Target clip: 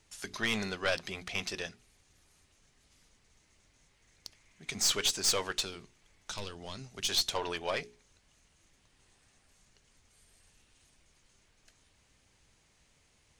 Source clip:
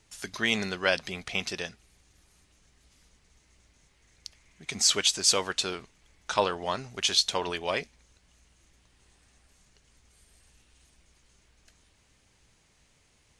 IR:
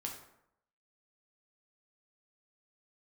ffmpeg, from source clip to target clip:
-filter_complex "[0:a]aeval=exprs='(tanh(10*val(0)+0.35)-tanh(0.35))/10':c=same,asettb=1/sr,asplit=3[s0][s1][s2];[s0]atrim=end=5.634[s3];[s1]atrim=start=5.63:end=7.09,asetpts=PTS-STARTPTS,afade=t=in:d=0.004:c=qsin,afade=t=out:st=1.456:d=0.004:c=qsin,acrossover=split=280|3000[s4][s5][s6];[s5]acompressor=threshold=0.00631:ratio=6[s7];[s4][s7][s6]amix=inputs=3:normalize=0[s8];[s2]atrim=start=7.086[s9];[s3][s8]acrossfade=d=0.004:c1=hsin:c2=qsin[s10];[s10][s9]acrossfade=d=0.004:c1=qsin:c2=hsin,bandreject=f=60:t=h:w=6,bandreject=f=120:t=h:w=6,bandreject=f=180:t=h:w=6,bandreject=f=240:t=h:w=6,bandreject=f=300:t=h:w=6,bandreject=f=360:t=h:w=6,bandreject=f=420:t=h:w=6,volume=0.841"

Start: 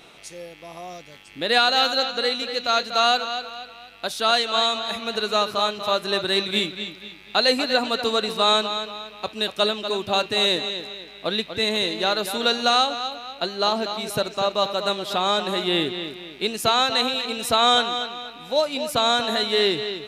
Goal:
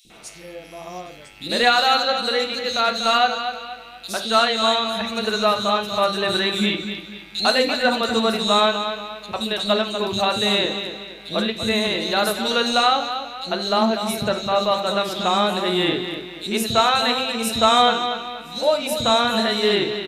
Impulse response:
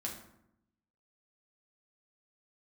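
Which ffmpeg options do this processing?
-filter_complex "[0:a]acontrast=25,acrossover=split=330|3900[s0][s1][s2];[s0]adelay=50[s3];[s1]adelay=100[s4];[s3][s4][s2]amix=inputs=3:normalize=0,asplit=2[s5][s6];[1:a]atrim=start_sample=2205,atrim=end_sample=4410,lowshelf=f=110:g=8.5[s7];[s6][s7]afir=irnorm=-1:irlink=0,volume=0.944[s8];[s5][s8]amix=inputs=2:normalize=0,volume=0.501"

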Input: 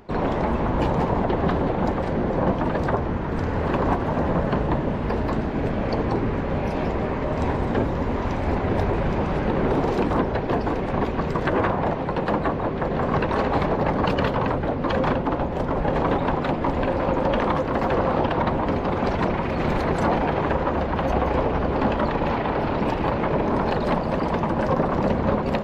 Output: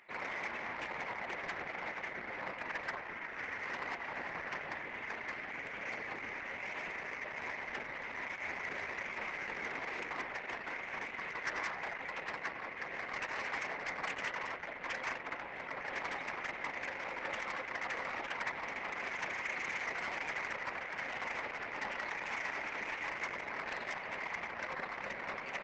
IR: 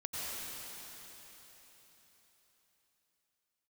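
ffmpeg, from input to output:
-af "bandpass=f=2100:t=q:w=5.3:csg=0,aecho=1:1:95:0.2,asoftclip=type=tanh:threshold=0.0133,volume=2.11" -ar 48000 -c:a libopus -b:a 12k

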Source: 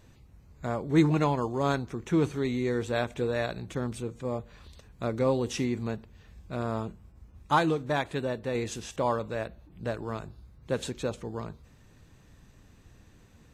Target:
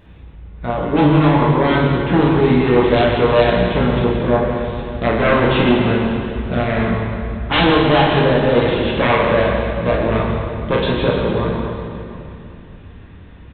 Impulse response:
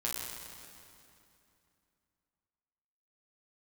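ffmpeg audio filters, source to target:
-filter_complex "[0:a]dynaudnorm=f=280:g=17:m=2,aresample=8000,aeval=exprs='0.596*sin(PI/2*5.62*val(0)/0.596)':c=same,aresample=44100[s0];[1:a]atrim=start_sample=2205[s1];[s0][s1]afir=irnorm=-1:irlink=0,volume=0.398"

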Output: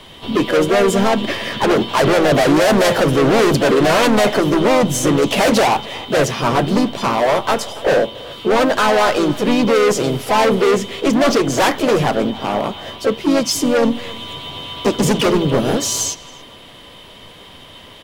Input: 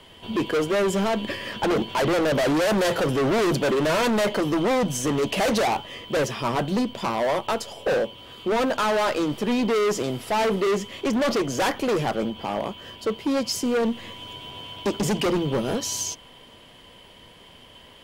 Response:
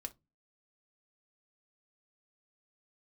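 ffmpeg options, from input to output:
-filter_complex "[0:a]asplit=2[s0][s1];[s1]adelay=280,highpass=300,lowpass=3400,asoftclip=type=hard:threshold=0.0447,volume=0.2[s2];[s0][s2]amix=inputs=2:normalize=0,asplit=2[s3][s4];[1:a]atrim=start_sample=2205,asetrate=24696,aresample=44100[s5];[s4][s5]afir=irnorm=-1:irlink=0,volume=0.224[s6];[s3][s6]amix=inputs=2:normalize=0,asplit=3[s7][s8][s9];[s8]asetrate=29433,aresample=44100,atempo=1.49831,volume=0.126[s10];[s9]asetrate=52444,aresample=44100,atempo=0.840896,volume=0.501[s11];[s7][s10][s11]amix=inputs=3:normalize=0,acontrast=58"

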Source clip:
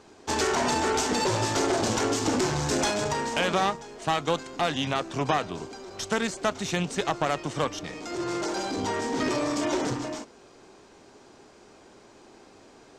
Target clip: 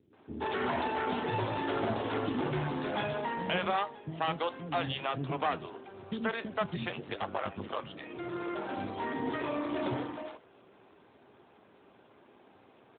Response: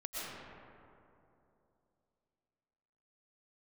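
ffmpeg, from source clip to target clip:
-filter_complex "[0:a]asettb=1/sr,asplit=3[s0][s1][s2];[s0]atrim=end=6.764[s3];[s1]atrim=start=6.76:end=7.86,asetpts=PTS-STARTPTS,afade=t=in:d=0.004:c=qsin,afade=t=out:st=1.096:d=0.004:c=qsin,aeval=exprs='val(0)*sin(2*PI*50*n/s)':c=same[s4];[s2]atrim=start=7.856[s5];[s3][s4]acrossfade=d=0.004:c1=hsin:c2=qsin[s6];[s6][s5]acrossfade=d=0.004:c1=qsin:c2=hsin,flanger=delay=6.5:depth=5.6:regen=-81:speed=0.37:shape=triangular,acrossover=split=350[s7][s8];[s8]adelay=130[s9];[s7][s9]amix=inputs=2:normalize=0" -ar 8000 -c:a libopencore_amrnb -b:a 12200

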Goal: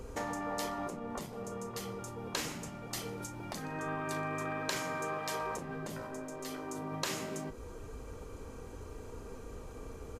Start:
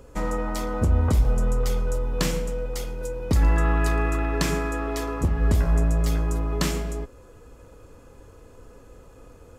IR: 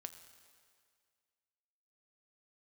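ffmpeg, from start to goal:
-filter_complex "[0:a]acompressor=threshold=0.0282:ratio=4,afftfilt=real='re*lt(hypot(re,im),0.0794)':imag='im*lt(hypot(re,im),0.0794)':win_size=1024:overlap=0.75,asplit=2[s0][s1];[s1]adelay=35,volume=0.251[s2];[s0][s2]amix=inputs=2:normalize=0,asetrate=41454,aresample=44100,volume=1.26"

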